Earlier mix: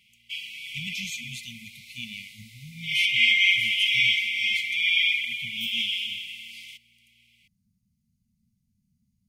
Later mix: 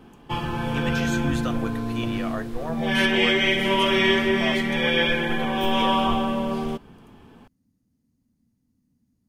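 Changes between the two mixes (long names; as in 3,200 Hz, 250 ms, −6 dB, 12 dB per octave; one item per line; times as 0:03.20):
background: remove high-pass with resonance 1,600 Hz, resonance Q 2.5
master: remove linear-phase brick-wall band-stop 230–2,000 Hz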